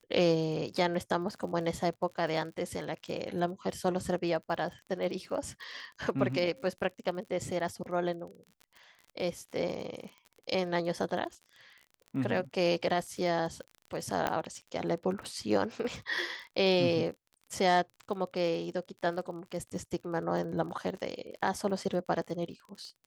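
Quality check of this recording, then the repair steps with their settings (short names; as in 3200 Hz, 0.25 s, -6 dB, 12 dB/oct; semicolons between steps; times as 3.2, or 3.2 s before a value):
crackle 36/s -41 dBFS
14.27 pop -15 dBFS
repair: de-click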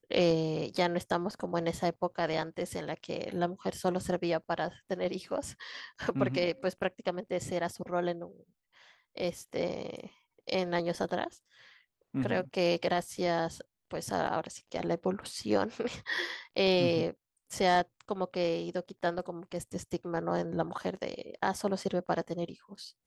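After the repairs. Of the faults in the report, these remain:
14.27 pop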